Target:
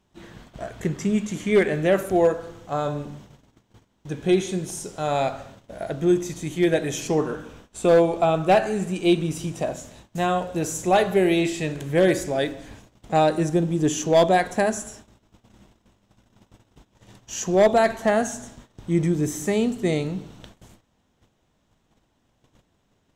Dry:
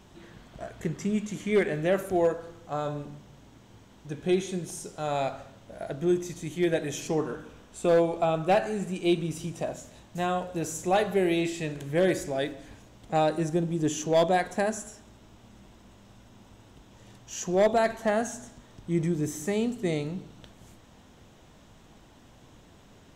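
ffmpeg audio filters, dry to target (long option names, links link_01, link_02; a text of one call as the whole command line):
ffmpeg -i in.wav -af "agate=range=-19dB:threshold=-50dB:ratio=16:detection=peak,volume=5.5dB" out.wav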